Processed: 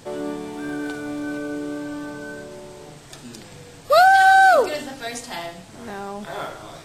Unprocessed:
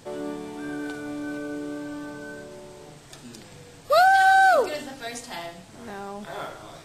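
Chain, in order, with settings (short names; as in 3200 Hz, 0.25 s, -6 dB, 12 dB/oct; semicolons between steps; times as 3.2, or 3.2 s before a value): 0.52–1.21 crackle 290/s -> 67/s -47 dBFS; gain +4 dB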